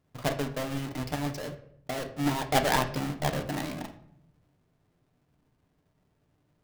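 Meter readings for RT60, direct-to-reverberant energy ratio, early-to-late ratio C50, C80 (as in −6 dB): 0.70 s, 4.5 dB, 11.5 dB, 15.0 dB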